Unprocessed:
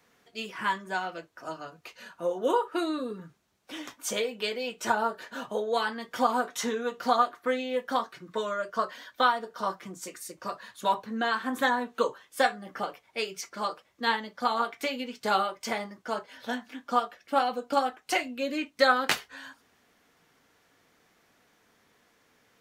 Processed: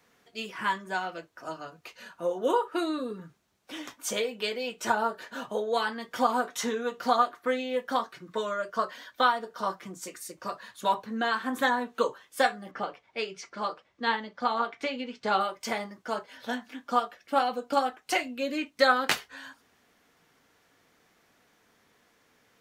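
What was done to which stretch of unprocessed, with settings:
12.71–15.41 air absorption 99 m

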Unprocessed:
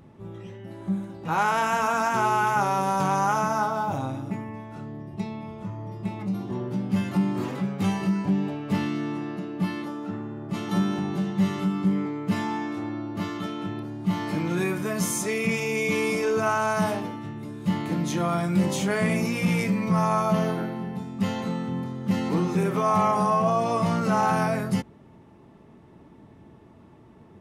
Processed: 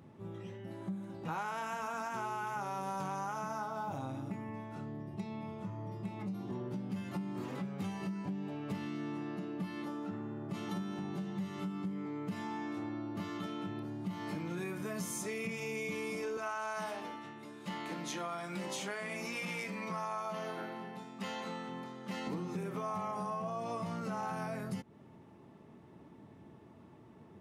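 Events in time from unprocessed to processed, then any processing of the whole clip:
16.37–22.27 weighting filter A
whole clip: compressor, threshold -31 dBFS; HPF 87 Hz; gain -5 dB

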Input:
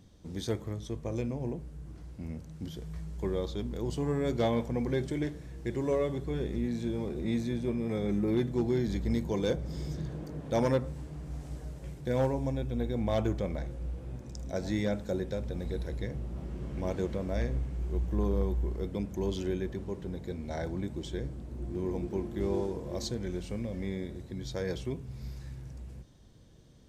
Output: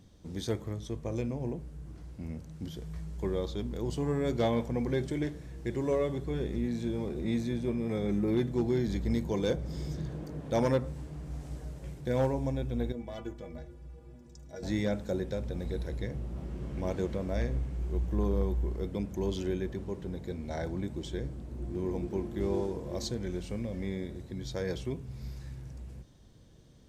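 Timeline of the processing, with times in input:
12.92–14.63 metallic resonator 72 Hz, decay 0.33 s, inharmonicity 0.03

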